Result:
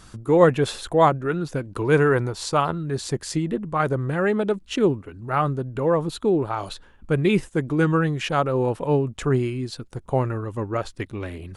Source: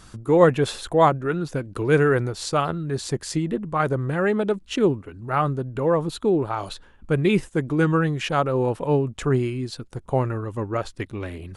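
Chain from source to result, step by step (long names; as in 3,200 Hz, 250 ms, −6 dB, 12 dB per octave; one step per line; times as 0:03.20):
0:01.63–0:02.83: parametric band 960 Hz +6.5 dB 0.38 octaves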